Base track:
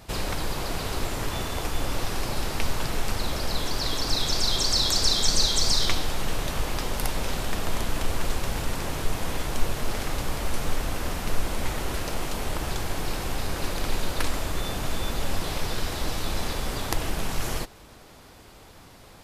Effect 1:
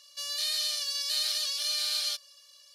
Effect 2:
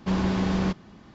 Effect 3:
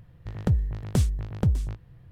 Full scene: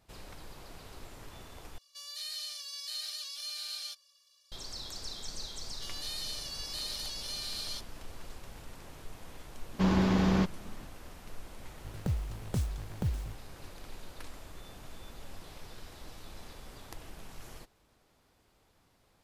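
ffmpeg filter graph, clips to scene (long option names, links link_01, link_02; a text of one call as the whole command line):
ffmpeg -i bed.wav -i cue0.wav -i cue1.wav -i cue2.wav -filter_complex "[1:a]asplit=2[link_01][link_02];[0:a]volume=-19.5dB[link_03];[link_01]aecho=1:1:2.6:0.34[link_04];[3:a]acrusher=bits=6:mode=log:mix=0:aa=0.000001[link_05];[link_03]asplit=2[link_06][link_07];[link_06]atrim=end=1.784[link_08];[link_04]atrim=end=2.74,asetpts=PTS-STARTPTS,volume=-10.5dB[link_09];[link_07]atrim=start=4.516[link_10];[link_02]atrim=end=2.74,asetpts=PTS-STARTPTS,volume=-9dB,afade=type=in:duration=0.004:curve=hsin,afade=type=out:start_time=2.736:duration=0.004:curve=hsin,adelay=5640[link_11];[2:a]atrim=end=1.14,asetpts=PTS-STARTPTS,volume=-1.5dB,afade=type=in:duration=0.004:curve=hsin,afade=type=out:start_time=1.136:duration=0.004:curve=hsin,adelay=9730[link_12];[link_05]atrim=end=2.11,asetpts=PTS-STARTPTS,volume=-9.5dB,afade=type=in:duration=0.004:curve=hsin,afade=type=out:start_time=2.106:duration=0.004:curve=hsin,adelay=11590[link_13];[link_08][link_09]acrossfade=duration=0.004:curve1=hsin:curve2=hsin[link_14];[link_14][link_10]acrossfade=duration=0.004:curve1=hsin:curve2=hsin[link_15];[link_15][link_11][link_12][link_13]amix=inputs=4:normalize=0" out.wav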